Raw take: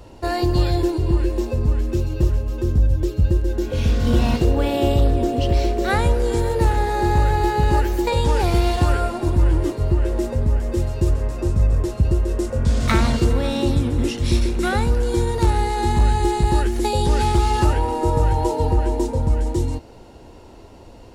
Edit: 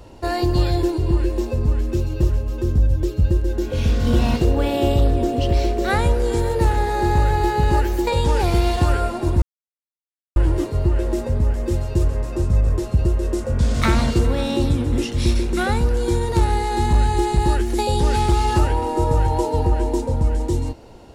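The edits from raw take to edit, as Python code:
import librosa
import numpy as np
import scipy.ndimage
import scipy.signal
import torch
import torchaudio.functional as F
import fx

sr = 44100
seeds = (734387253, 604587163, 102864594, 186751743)

y = fx.edit(x, sr, fx.insert_silence(at_s=9.42, length_s=0.94), tone=tone)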